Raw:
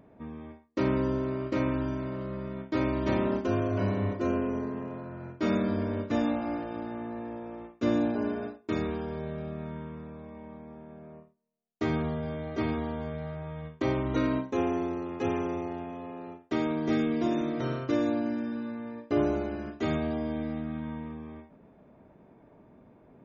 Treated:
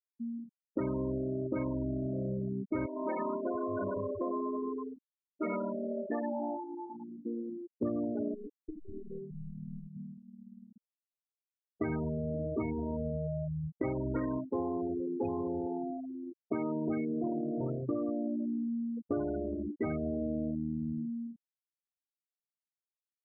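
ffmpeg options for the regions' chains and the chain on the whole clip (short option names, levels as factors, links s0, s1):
-filter_complex "[0:a]asettb=1/sr,asplit=3[s0][s1][s2];[s0]atrim=end=2.864[s3];[s1]atrim=start=2.86:end=7.26,asetpts=PTS-STARTPTS,afade=t=in:d=0.004:c=qsin,afade=t=out:st=4.396:d=0.004:c=qsin,highpass=f=610:p=1,aecho=1:1:104:0.596,atrim=end_sample=194040[s4];[s2]atrim=start=7.256[s5];[s3][s4]acrossfade=d=0.004:c1=hsin:c2=qsin[s6];[s6][s5]acrossfade=d=0.004:c1=qsin:c2=hsin,asettb=1/sr,asplit=3[s7][s8][s9];[s7]atrim=end=8.344[s10];[s8]atrim=start=8.34:end=9.96,asetpts=PTS-STARTPTS,afade=t=in:d=0.004:c=qsin,afade=t=out:st=1.616:d=0.004:c=qsin,acompressor=threshold=0.0224:ratio=16:attack=3.2:release=140:knee=1:detection=peak,aeval=exprs='clip(val(0),-1,0.00422)':c=same[s11];[s9]atrim=start=9.956[s12];[s10][s11]acrossfade=d=0.004:c1=hsin:c2=qsin[s13];[s13][s12]acrossfade=d=0.004:c1=qsin:c2=hsin,afftfilt=real='re*gte(hypot(re,im),0.0562)':imag='im*gte(hypot(re,im),0.0562)':win_size=1024:overlap=0.75,highshelf=f=2500:g=11.5,acompressor=threshold=0.0158:ratio=6,volume=1.78"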